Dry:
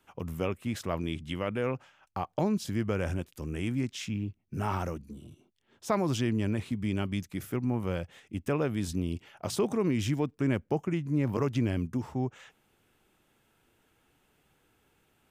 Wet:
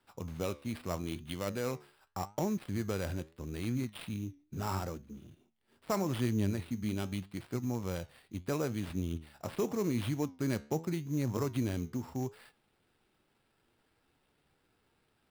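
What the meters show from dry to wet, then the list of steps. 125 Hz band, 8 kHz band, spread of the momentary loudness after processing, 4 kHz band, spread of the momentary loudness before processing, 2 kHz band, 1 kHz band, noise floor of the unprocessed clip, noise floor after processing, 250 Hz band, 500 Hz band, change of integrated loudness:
-4.0 dB, -2.0 dB, 9 LU, -4.5 dB, 9 LU, -5.5 dB, -4.5 dB, -71 dBFS, -75 dBFS, -4.5 dB, -4.5 dB, -4.5 dB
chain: switching dead time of 0.057 ms; sample-rate reducer 6400 Hz, jitter 0%; flange 0.8 Hz, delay 7.9 ms, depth 6.3 ms, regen +81%

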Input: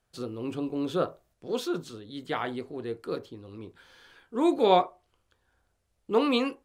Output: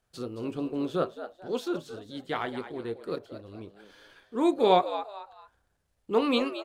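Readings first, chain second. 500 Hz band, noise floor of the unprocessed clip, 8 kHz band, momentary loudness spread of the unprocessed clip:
0.0 dB, -75 dBFS, n/a, 21 LU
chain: transient shaper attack -1 dB, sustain -6 dB; on a send: frequency-shifting echo 0.221 s, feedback 32%, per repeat +100 Hz, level -12 dB

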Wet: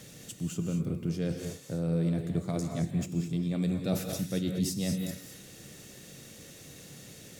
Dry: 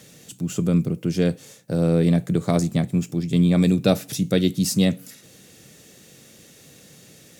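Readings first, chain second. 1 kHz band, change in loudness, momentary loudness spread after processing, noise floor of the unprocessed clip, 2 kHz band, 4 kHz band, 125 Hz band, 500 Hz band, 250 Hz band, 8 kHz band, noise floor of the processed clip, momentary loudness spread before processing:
-12.0 dB, -10.5 dB, 18 LU, -50 dBFS, -11.0 dB, -10.5 dB, -9.5 dB, -12.0 dB, -10.5 dB, -7.5 dB, -50 dBFS, 8 LU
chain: low shelf 79 Hz +9.5 dB; reverse; compressor 6:1, threshold -27 dBFS, peak gain reduction 14.5 dB; reverse; non-linear reverb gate 0.25 s rising, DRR 4 dB; gain -2 dB

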